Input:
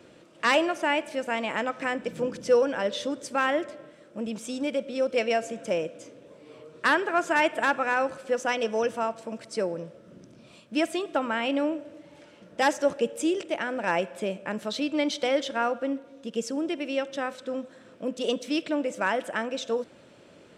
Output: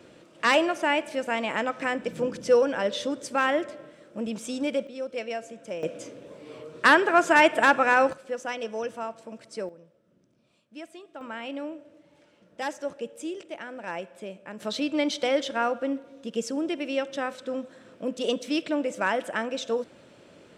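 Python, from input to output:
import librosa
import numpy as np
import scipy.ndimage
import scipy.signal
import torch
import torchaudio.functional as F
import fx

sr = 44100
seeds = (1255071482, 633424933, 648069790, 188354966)

y = fx.gain(x, sr, db=fx.steps((0.0, 1.0), (4.87, -7.5), (5.83, 5.0), (8.13, -5.5), (9.69, -16.0), (11.21, -8.5), (14.6, 0.5)))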